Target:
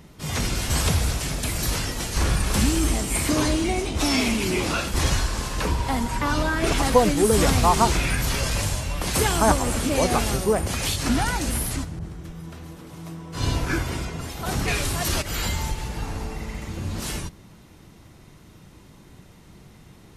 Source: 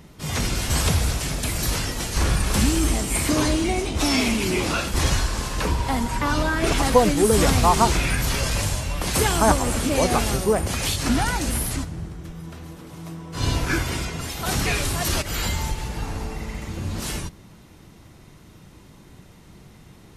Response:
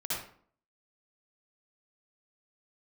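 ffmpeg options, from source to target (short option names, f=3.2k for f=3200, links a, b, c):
-filter_complex "[0:a]asettb=1/sr,asplit=3[a][b][c];[a]atrim=end=11.994[d];[b]atrim=start=11.99:end=14.68,asetpts=PTS-STARTPTS,afade=t=in:d=0.004:c=qsin,afade=t=out:st=2.686:d=0.004:c=qsin,adynamicequalizer=threshold=0.00891:dfrequency=1500:dqfactor=0.7:tfrequency=1500:tqfactor=0.7:attack=5:release=100:ratio=0.375:range=3:mode=cutabove:tftype=highshelf[e];[c]atrim=start=14.676[f];[d][e]acrossfade=d=0.004:c1=hsin:c2=qsin[g];[g][f]acrossfade=d=0.004:c1=qsin:c2=hsin,volume=-1dB"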